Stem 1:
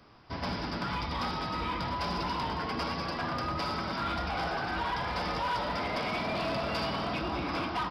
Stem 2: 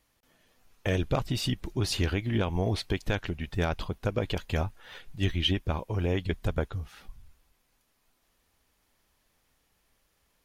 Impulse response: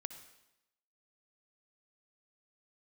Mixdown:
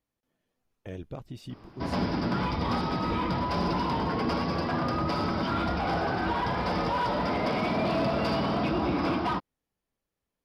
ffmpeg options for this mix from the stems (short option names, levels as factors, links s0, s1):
-filter_complex "[0:a]adelay=1500,volume=0.891[s0];[1:a]volume=0.112[s1];[s0][s1]amix=inputs=2:normalize=0,equalizer=f=250:w=0.32:g=9.5"